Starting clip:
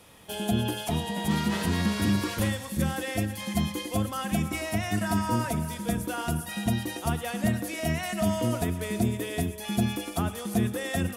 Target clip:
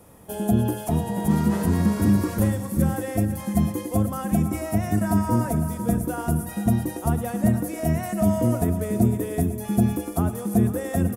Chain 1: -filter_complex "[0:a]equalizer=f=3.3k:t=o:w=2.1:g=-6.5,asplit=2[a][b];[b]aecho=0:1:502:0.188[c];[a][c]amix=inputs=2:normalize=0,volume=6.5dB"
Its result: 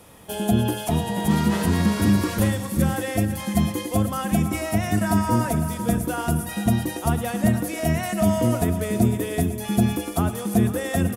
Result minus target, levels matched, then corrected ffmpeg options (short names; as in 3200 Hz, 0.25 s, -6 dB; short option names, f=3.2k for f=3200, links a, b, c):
4000 Hz band +9.5 dB
-filter_complex "[0:a]equalizer=f=3.3k:t=o:w=2.1:g=-18,asplit=2[a][b];[b]aecho=0:1:502:0.188[c];[a][c]amix=inputs=2:normalize=0,volume=6.5dB"